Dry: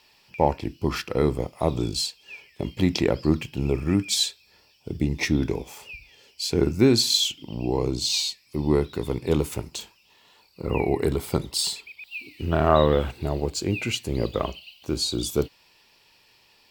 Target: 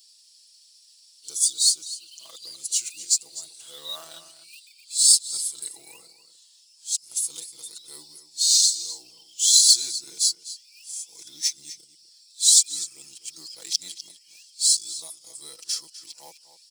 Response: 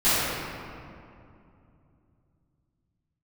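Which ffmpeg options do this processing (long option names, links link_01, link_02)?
-filter_complex "[0:a]areverse,aresample=22050,aresample=44100,aderivative,aecho=1:1:6.1:0.69,asplit=2[link_01][link_02];[link_02]acrusher=bits=3:mode=log:mix=0:aa=0.000001,volume=-6.5dB[link_03];[link_01][link_03]amix=inputs=2:normalize=0,asplit=2[link_04][link_05];[link_05]adelay=250.7,volume=-12dB,highshelf=frequency=4000:gain=-5.64[link_06];[link_04][link_06]amix=inputs=2:normalize=0,acrossover=split=360|2600[link_07][link_08][link_09];[link_09]aexciter=amount=10.5:drive=4.2:freq=3400[link_10];[link_07][link_08][link_10]amix=inputs=3:normalize=0,volume=-13dB"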